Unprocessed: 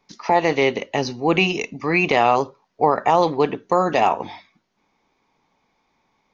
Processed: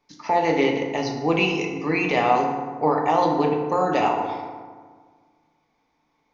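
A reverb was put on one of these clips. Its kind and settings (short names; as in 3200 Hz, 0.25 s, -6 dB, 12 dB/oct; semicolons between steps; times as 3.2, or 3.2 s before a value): FDN reverb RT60 1.6 s, low-frequency decay 1.2×, high-frequency decay 0.5×, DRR 0.5 dB; gain -6 dB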